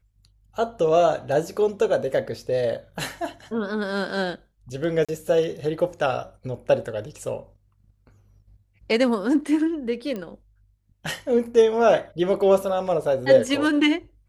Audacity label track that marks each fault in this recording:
5.050000	5.090000	dropout 36 ms
10.160000	10.160000	pop -20 dBFS

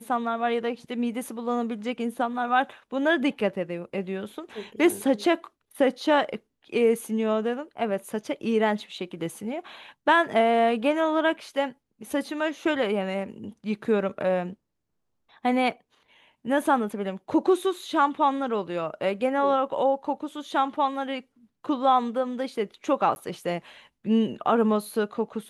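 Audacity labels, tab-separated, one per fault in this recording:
23.150000	23.160000	dropout

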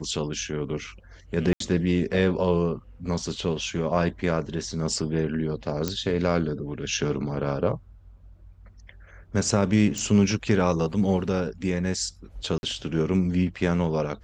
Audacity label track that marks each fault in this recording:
1.530000	1.600000	dropout 73 ms
5.880000	5.880000	pop -11 dBFS
9.980000	9.980000	pop
12.580000	12.630000	dropout 51 ms

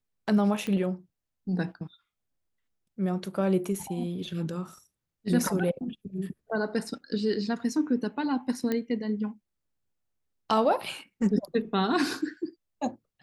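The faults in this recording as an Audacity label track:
0.670000	0.670000	pop -21 dBFS
8.720000	8.720000	pop -16 dBFS

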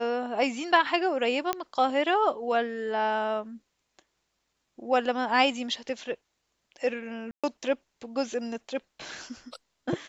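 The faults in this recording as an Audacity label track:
1.530000	1.530000	pop -12 dBFS
7.310000	7.440000	dropout 126 ms

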